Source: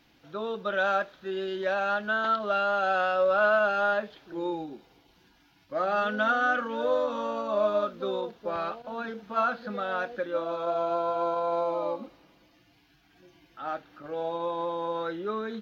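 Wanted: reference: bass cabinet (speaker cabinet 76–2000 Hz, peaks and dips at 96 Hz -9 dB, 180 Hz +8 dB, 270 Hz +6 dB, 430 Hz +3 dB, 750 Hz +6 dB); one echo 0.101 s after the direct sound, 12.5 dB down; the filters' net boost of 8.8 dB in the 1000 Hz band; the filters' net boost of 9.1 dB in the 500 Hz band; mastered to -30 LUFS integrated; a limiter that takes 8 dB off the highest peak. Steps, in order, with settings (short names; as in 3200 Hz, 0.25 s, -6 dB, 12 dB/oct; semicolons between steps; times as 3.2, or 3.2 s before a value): bell 500 Hz +6 dB; bell 1000 Hz +6.5 dB; limiter -16.5 dBFS; speaker cabinet 76–2000 Hz, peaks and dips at 96 Hz -9 dB, 180 Hz +8 dB, 270 Hz +6 dB, 430 Hz +3 dB, 750 Hz +6 dB; echo 0.101 s -12.5 dB; gain -6.5 dB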